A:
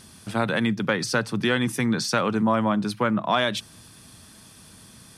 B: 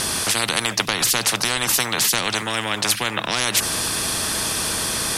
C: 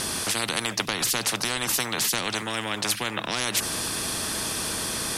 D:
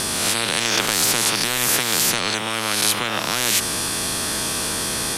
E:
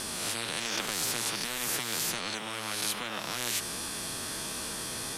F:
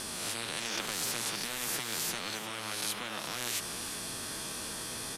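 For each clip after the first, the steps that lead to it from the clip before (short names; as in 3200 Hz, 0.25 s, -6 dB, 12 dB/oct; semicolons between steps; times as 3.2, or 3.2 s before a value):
spectral compressor 10:1; gain +7 dB
bell 280 Hz +3 dB 1.6 oct; gain -6 dB
spectral swells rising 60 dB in 1.17 s; gain +2.5 dB
flange 1.3 Hz, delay 3.2 ms, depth 5.4 ms, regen -46%; gain -8.5 dB
echo 0.354 s -12 dB; gain -3 dB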